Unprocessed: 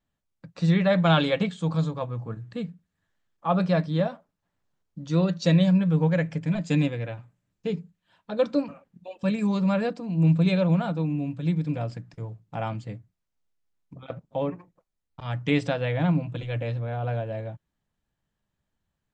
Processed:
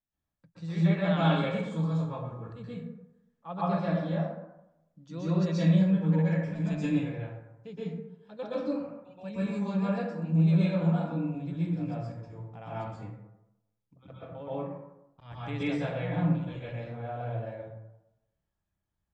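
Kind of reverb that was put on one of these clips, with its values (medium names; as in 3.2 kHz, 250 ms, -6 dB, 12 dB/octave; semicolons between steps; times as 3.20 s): plate-style reverb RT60 0.89 s, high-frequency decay 0.45×, pre-delay 110 ms, DRR -9.5 dB; trim -16 dB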